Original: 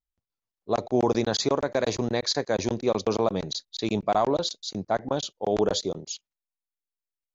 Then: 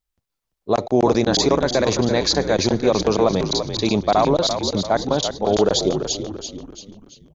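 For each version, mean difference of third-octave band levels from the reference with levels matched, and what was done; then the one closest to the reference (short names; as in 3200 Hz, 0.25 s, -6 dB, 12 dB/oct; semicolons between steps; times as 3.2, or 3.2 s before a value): 5.0 dB: in parallel at +1 dB: limiter -18.5 dBFS, peak gain reduction 7 dB; on the sum: frequency-shifting echo 0.339 s, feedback 45%, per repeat -54 Hz, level -8 dB; gain +2 dB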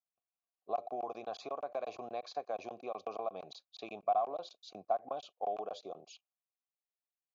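7.5 dB: compressor, threshold -29 dBFS, peak gain reduction 11 dB; vowel filter a; gain +5 dB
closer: first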